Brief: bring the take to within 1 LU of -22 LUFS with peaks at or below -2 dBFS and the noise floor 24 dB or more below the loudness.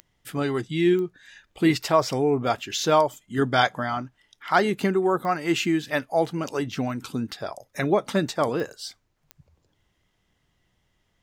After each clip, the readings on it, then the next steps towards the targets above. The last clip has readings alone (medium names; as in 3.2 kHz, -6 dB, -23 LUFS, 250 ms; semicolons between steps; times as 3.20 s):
clicks found 5; loudness -24.5 LUFS; peak level -5.5 dBFS; loudness target -22.0 LUFS
-> de-click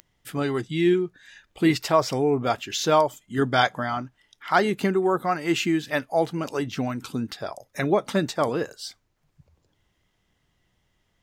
clicks found 1; loudness -24.5 LUFS; peak level -5.5 dBFS; loudness target -22.0 LUFS
-> trim +2.5 dB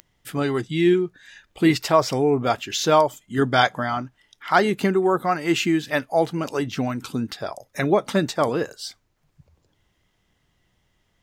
loudness -22.0 LUFS; peak level -3.0 dBFS; noise floor -69 dBFS